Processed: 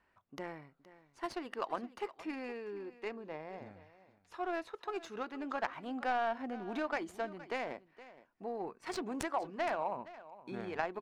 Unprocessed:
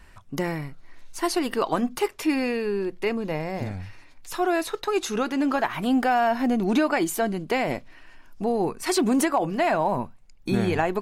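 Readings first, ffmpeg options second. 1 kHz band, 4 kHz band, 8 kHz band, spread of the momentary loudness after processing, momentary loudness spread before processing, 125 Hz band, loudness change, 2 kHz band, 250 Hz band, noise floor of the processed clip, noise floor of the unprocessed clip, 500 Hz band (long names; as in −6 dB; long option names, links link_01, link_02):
−12.0 dB, −16.0 dB, −21.5 dB, 15 LU, 12 LU, −22.5 dB, −14.5 dB, −12.0 dB, −18.5 dB, −72 dBFS, −49 dBFS, −14.0 dB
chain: -af "aderivative,adynamicsmooth=sensitivity=1.5:basefreq=780,aecho=1:1:468:0.141,volume=10dB"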